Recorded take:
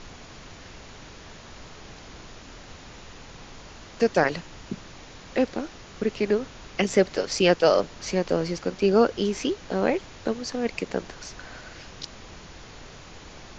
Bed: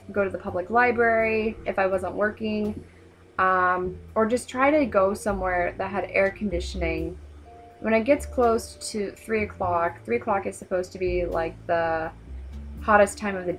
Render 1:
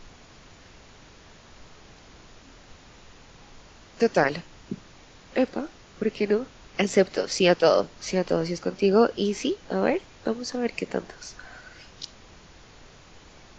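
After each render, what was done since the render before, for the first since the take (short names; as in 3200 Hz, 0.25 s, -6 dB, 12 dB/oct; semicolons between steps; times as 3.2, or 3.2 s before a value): noise print and reduce 6 dB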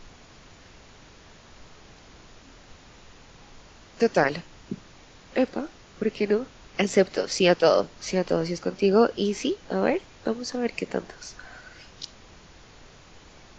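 nothing audible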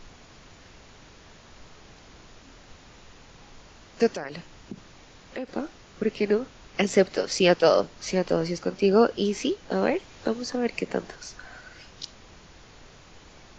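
4.07–5.49 compressor 3:1, threshold -33 dBFS; 9.71–11.16 three-band squash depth 40%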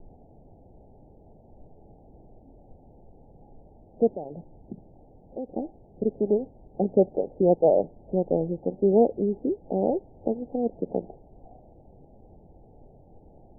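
steep low-pass 840 Hz 96 dB/oct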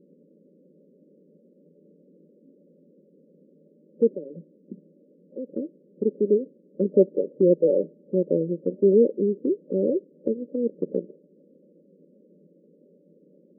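FFT band-pass 160–600 Hz; dynamic EQ 370 Hz, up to +4 dB, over -35 dBFS, Q 2.2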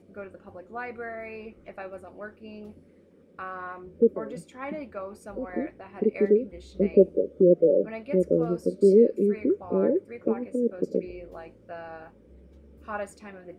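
add bed -16 dB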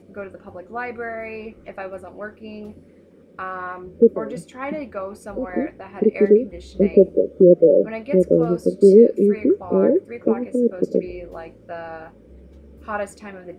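gain +7 dB; limiter -2 dBFS, peak gain reduction 3 dB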